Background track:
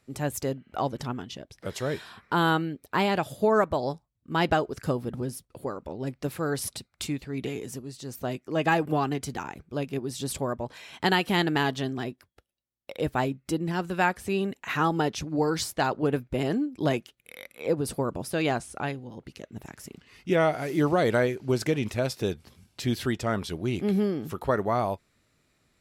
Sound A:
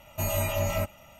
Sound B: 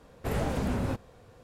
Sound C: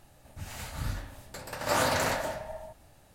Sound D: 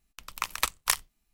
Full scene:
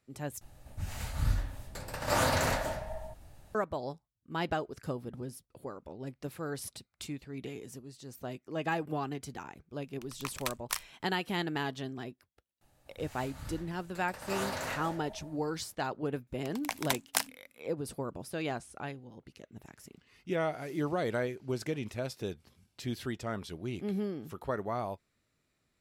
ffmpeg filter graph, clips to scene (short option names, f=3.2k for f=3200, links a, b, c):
-filter_complex "[3:a]asplit=2[a][b];[4:a]asplit=2[c][d];[0:a]volume=-9dB[e];[a]lowshelf=f=110:g=10.5[f];[d]afreqshift=-280[g];[e]asplit=2[h][i];[h]atrim=end=0.414[j];[f]atrim=end=3.14,asetpts=PTS-STARTPTS,volume=-2dB[k];[i]atrim=start=3.546[l];[c]atrim=end=1.33,asetpts=PTS-STARTPTS,volume=-9dB,afade=t=in:d=0.004:c=hsin,afade=t=out:st=1.326:d=0.004:c=hsin,adelay=9830[m];[b]atrim=end=3.14,asetpts=PTS-STARTPTS,volume=-9.5dB,afade=t=in:d=0.004:c=hsin,afade=t=out:st=3.136:d=0.004:c=hsin,adelay=12610[n];[g]atrim=end=1.33,asetpts=PTS-STARTPTS,volume=-4.5dB,afade=t=in:d=0.004:c=hsin,afade=t=out:st=1.326:d=0.004:c=hsin,adelay=16270[o];[j][k]acrossfade=d=0.004:c1=hsin:c2=hsin[p];[p][l]acrossfade=d=0.004:c1=hsin:c2=hsin[q];[q][m][n][o]amix=inputs=4:normalize=0"